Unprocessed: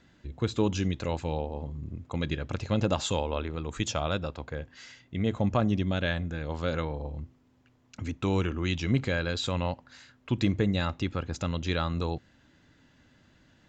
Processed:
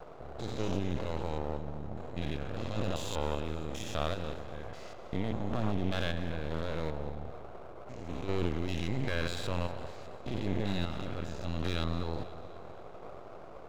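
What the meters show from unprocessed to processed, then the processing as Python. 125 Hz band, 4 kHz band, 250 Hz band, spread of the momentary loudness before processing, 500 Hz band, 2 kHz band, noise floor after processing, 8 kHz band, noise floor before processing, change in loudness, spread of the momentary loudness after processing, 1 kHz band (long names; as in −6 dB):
−6.0 dB, −5.5 dB, −6.5 dB, 12 LU, −4.5 dB, −6.0 dB, −47 dBFS, −7.5 dB, −63 dBFS, −6.0 dB, 14 LU, −4.5 dB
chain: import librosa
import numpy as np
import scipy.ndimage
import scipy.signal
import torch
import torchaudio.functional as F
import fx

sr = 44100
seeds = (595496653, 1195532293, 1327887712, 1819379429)

y = fx.spec_steps(x, sr, hold_ms=200)
y = fx.dmg_noise_band(y, sr, seeds[0], low_hz=350.0, high_hz=760.0, level_db=-44.0)
y = np.maximum(y, 0.0)
y = fx.echo_feedback(y, sr, ms=247, feedback_pct=53, wet_db=-16)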